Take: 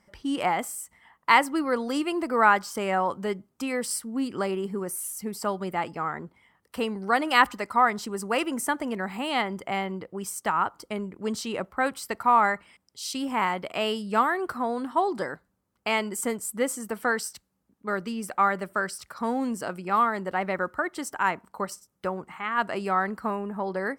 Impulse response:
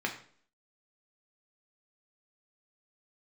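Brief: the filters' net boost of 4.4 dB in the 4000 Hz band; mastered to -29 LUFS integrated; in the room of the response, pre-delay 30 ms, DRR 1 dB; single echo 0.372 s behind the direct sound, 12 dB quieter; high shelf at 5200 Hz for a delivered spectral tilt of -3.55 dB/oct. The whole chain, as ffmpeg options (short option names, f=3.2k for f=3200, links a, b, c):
-filter_complex "[0:a]equalizer=f=4k:t=o:g=8,highshelf=f=5.2k:g=-3.5,aecho=1:1:372:0.251,asplit=2[a][b];[1:a]atrim=start_sample=2205,adelay=30[c];[b][c]afir=irnorm=-1:irlink=0,volume=-7.5dB[d];[a][d]amix=inputs=2:normalize=0,volume=-4.5dB"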